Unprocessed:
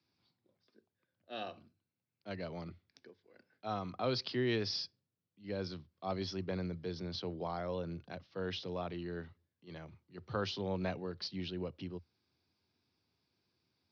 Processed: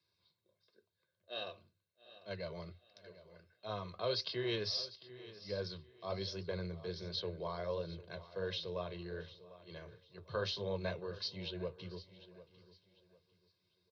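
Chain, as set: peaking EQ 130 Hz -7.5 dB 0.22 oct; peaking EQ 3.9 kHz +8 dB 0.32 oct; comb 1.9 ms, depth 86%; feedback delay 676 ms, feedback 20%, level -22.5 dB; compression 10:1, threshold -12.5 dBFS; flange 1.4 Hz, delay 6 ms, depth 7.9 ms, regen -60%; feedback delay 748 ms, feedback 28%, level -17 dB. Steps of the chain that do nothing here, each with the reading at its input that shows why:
compression, threshold -12.5 dBFS: peak at its input -19.5 dBFS

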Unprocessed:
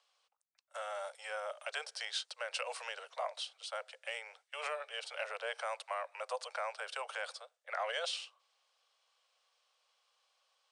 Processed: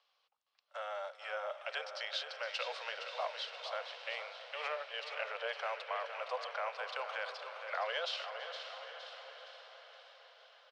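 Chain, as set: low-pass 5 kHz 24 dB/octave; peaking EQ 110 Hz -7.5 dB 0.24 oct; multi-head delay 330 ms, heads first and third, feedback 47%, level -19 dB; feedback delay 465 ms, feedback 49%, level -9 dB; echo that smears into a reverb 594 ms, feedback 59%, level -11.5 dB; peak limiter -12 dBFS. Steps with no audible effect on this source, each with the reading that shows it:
peaking EQ 110 Hz: input has nothing below 380 Hz; peak limiter -12 dBFS: peak at its input -23.5 dBFS

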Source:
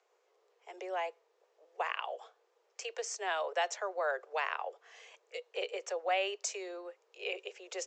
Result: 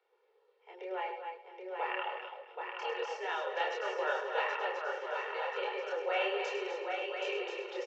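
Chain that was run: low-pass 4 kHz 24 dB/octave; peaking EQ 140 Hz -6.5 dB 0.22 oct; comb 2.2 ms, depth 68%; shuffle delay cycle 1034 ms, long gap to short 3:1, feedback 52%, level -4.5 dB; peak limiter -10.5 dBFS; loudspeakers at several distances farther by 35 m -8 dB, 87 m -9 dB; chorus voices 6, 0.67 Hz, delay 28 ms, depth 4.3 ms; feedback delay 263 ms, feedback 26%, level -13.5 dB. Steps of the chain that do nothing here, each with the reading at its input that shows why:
peaking EQ 140 Hz: input has nothing below 320 Hz; peak limiter -10.5 dBFS: peak at its input -18.0 dBFS

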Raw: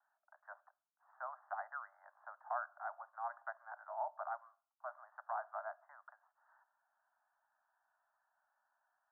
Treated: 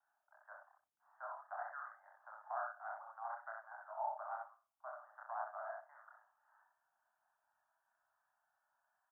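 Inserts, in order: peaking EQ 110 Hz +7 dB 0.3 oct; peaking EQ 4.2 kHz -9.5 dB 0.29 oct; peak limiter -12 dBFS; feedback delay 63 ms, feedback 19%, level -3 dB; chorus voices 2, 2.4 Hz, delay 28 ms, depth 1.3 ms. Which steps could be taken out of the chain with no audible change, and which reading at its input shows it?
peaking EQ 110 Hz: input has nothing below 540 Hz; peaking EQ 4.2 kHz: input has nothing above 1.8 kHz; peak limiter -12 dBFS: peak at its input -25.5 dBFS

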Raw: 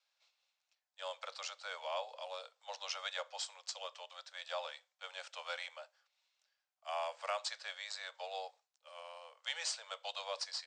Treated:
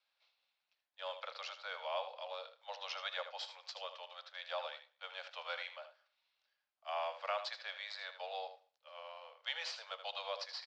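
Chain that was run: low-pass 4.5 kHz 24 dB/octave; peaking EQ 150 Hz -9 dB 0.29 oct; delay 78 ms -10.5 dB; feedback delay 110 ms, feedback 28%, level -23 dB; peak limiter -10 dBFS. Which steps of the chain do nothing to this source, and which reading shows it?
peaking EQ 150 Hz: input has nothing below 430 Hz; peak limiter -10 dBFS: peak at its input -24.0 dBFS

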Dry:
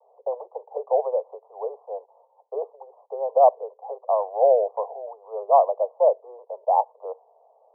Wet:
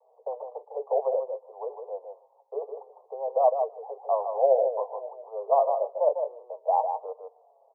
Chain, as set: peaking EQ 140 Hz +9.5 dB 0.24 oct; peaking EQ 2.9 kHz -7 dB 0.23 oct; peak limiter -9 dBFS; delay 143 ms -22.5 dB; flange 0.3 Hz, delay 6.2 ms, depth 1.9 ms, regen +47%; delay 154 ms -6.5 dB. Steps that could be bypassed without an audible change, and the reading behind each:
peaking EQ 140 Hz: input has nothing below 380 Hz; peaking EQ 2.9 kHz: input has nothing above 1.1 kHz

